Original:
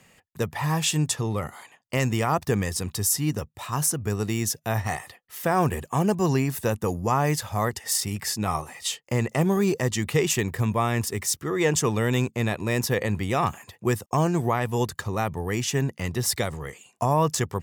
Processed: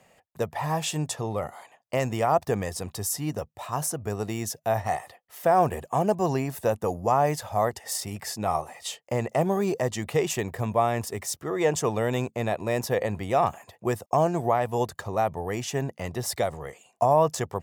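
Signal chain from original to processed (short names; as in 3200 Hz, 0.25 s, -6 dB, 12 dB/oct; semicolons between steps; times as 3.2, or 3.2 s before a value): bell 660 Hz +12.5 dB 1 oct; gain -6 dB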